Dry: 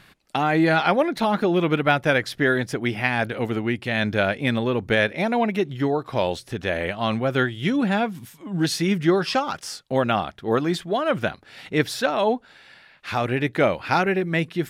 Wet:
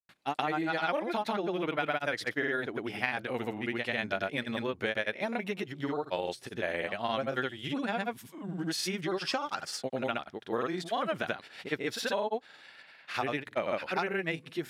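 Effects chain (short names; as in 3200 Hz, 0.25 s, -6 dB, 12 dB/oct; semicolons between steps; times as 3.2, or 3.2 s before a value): grains, pitch spread up and down by 0 st; compressor, threshold -24 dBFS, peak gain reduction 9.5 dB; HPF 360 Hz 6 dB/oct; gain -2 dB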